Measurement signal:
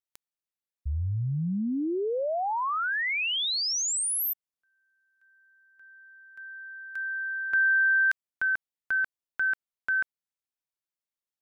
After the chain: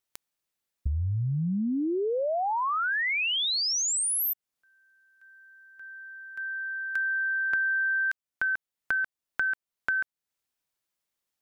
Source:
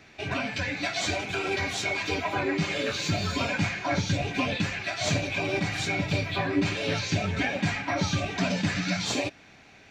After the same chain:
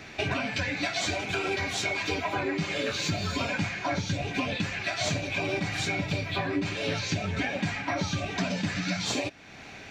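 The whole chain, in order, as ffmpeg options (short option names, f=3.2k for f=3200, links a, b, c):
-af "acompressor=threshold=-35dB:ratio=6:attack=26:release=510:knee=1:detection=rms,volume=8.5dB"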